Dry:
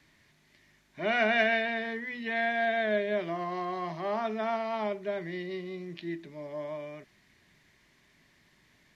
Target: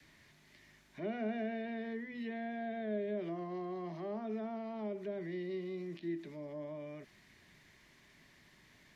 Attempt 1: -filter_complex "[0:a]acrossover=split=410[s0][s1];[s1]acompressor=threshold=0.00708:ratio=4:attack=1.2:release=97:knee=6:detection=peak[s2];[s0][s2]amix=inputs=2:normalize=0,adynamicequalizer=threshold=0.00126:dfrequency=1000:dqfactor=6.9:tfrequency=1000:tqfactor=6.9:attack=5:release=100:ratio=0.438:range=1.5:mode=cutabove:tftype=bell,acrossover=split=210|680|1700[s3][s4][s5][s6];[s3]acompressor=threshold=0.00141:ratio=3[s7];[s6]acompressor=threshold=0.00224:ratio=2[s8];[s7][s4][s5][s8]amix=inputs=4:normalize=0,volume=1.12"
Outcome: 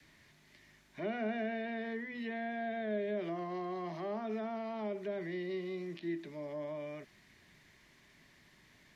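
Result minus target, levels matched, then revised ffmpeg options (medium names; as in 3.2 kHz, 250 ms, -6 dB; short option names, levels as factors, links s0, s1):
compression: peak gain reduction -6.5 dB
-filter_complex "[0:a]acrossover=split=410[s0][s1];[s1]acompressor=threshold=0.00266:ratio=4:attack=1.2:release=97:knee=6:detection=peak[s2];[s0][s2]amix=inputs=2:normalize=0,adynamicequalizer=threshold=0.00126:dfrequency=1000:dqfactor=6.9:tfrequency=1000:tqfactor=6.9:attack=5:release=100:ratio=0.438:range=1.5:mode=cutabove:tftype=bell,acrossover=split=210|680|1700[s3][s4][s5][s6];[s3]acompressor=threshold=0.00141:ratio=3[s7];[s6]acompressor=threshold=0.00224:ratio=2[s8];[s7][s4][s5][s8]amix=inputs=4:normalize=0,volume=1.12"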